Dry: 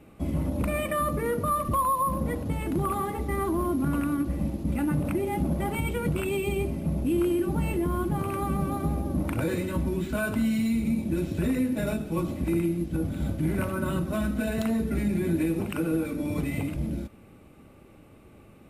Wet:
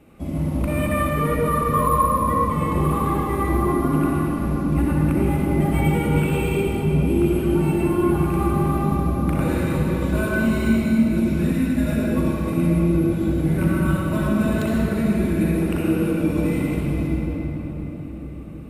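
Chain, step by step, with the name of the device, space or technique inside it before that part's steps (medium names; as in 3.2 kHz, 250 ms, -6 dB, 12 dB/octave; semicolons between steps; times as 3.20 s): cathedral (reverberation RT60 4.8 s, pre-delay 56 ms, DRR -5 dB); 11.52–11.97 s: peaking EQ 430 Hz -9.5 dB 0.78 oct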